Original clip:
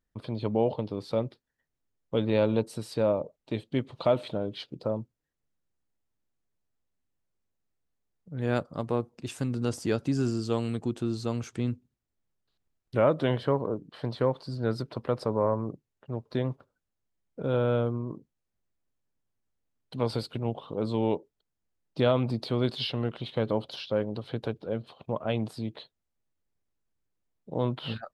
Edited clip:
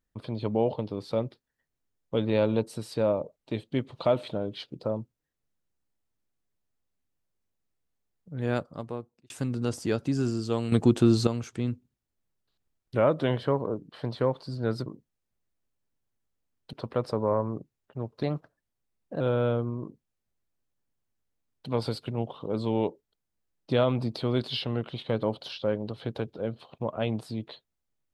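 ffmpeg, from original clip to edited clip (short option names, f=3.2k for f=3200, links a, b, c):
-filter_complex "[0:a]asplit=8[a][b][c][d][e][f][g][h];[a]atrim=end=9.3,asetpts=PTS-STARTPTS,afade=t=out:st=8.47:d=0.83[i];[b]atrim=start=9.3:end=10.722,asetpts=PTS-STARTPTS,afade=t=in:d=0.004:c=hsin[j];[c]atrim=start=10.718:end=11.272,asetpts=PTS-STARTPTS,volume=10dB[k];[d]atrim=start=11.268:end=14.862[l];[e]atrim=start=18.088:end=19.962[m];[f]atrim=start=14.858:end=16.364[n];[g]atrim=start=16.36:end=17.48,asetpts=PTS-STARTPTS,asetrate=50715,aresample=44100[o];[h]atrim=start=17.476[p];[i][j]concat=n=2:v=0:a=1[q];[q][k]acrossfade=d=0.004:c1=hsin:c2=hsin[r];[r][l]acrossfade=d=0.004:c1=hsin:c2=hsin[s];[s][m]acrossfade=d=0.004:c1=hsin:c2=hsin[t];[t][n]acrossfade=d=0.004:c1=hsin:c2=hsin[u];[u][o]acrossfade=d=0.004:c1=hsin:c2=hsin[v];[v][p]acrossfade=d=0.004:c1=hsin:c2=hsin"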